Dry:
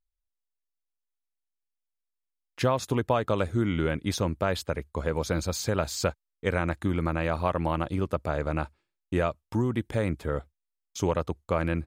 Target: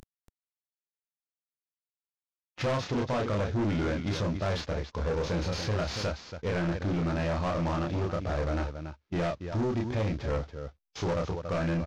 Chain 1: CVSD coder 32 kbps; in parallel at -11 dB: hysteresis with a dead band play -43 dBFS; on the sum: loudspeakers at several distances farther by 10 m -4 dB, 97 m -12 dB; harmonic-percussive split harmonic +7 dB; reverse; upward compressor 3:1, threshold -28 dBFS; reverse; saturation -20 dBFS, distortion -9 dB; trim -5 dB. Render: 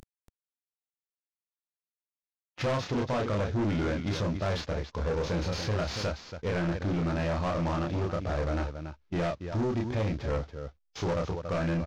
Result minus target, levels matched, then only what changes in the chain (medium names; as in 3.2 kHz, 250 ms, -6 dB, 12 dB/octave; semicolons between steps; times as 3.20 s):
hysteresis with a dead band: distortion +11 dB
change: hysteresis with a dead band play -54.5 dBFS